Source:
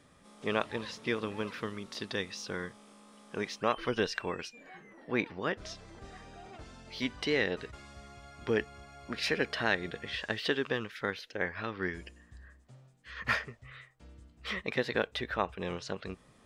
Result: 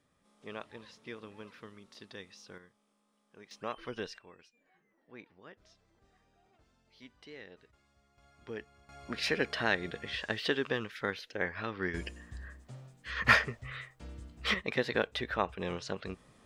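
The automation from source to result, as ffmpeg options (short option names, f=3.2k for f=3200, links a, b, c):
-af "asetnsamples=n=441:p=0,asendcmd='2.58 volume volume -19.5dB;3.51 volume volume -9dB;4.18 volume volume -20dB;8.18 volume volume -12.5dB;8.89 volume volume -0.5dB;11.94 volume volume 7dB;14.54 volume volume 0dB',volume=-12.5dB"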